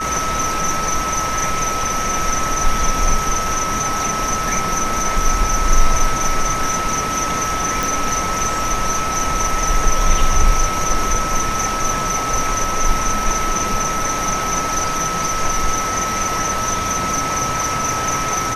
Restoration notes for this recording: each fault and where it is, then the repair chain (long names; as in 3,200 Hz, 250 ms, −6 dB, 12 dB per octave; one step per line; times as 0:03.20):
whistle 1,300 Hz −21 dBFS
0:07.83: click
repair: click removal
notch filter 1,300 Hz, Q 30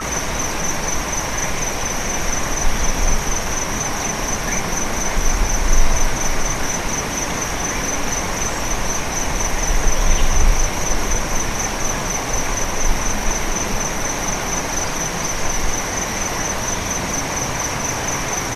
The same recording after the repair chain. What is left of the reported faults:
none of them is left